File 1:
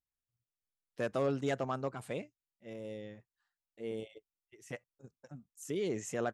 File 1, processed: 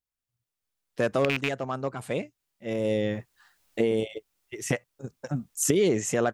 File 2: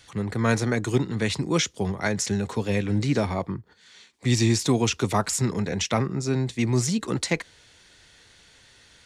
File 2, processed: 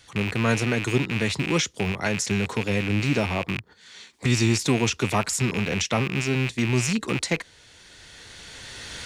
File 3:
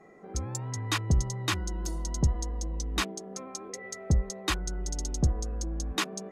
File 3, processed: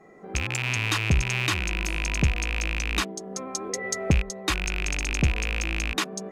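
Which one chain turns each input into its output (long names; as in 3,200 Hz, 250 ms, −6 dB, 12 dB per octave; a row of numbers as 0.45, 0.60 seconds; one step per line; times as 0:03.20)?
loose part that buzzes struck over −34 dBFS, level −18 dBFS
camcorder AGC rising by 11 dB per second
normalise the peak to −9 dBFS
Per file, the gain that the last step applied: +0.5, −0.5, +2.0 decibels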